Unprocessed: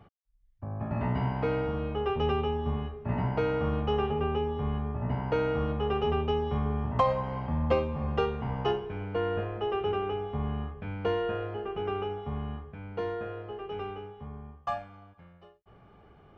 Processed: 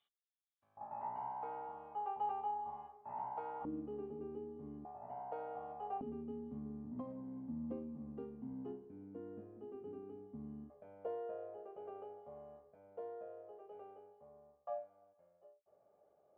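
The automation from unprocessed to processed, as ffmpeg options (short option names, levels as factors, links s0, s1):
-af "asetnsamples=n=441:p=0,asendcmd='0.77 bandpass f 850;3.65 bandpass f 300;4.85 bandpass f 740;6.01 bandpass f 260;10.7 bandpass f 590',bandpass=f=3500:t=q:w=9.3:csg=0"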